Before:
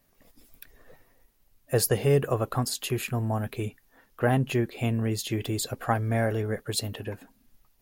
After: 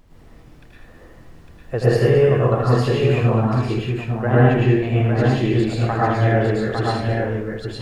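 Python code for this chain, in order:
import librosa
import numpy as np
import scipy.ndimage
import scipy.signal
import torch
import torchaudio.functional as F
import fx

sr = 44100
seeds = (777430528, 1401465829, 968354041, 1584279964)

y = scipy.signal.sosfilt(scipy.signal.butter(2, 2800.0, 'lowpass', fs=sr, output='sos'), x)
y = fx.dmg_noise_colour(y, sr, seeds[0], colour='brown', level_db=-50.0)
y = fx.echo_multitap(y, sr, ms=(80, 218, 855), db=(-6.0, -14.0, -4.0))
y = fx.rev_plate(y, sr, seeds[1], rt60_s=0.53, hf_ratio=0.8, predelay_ms=95, drr_db=-6.5)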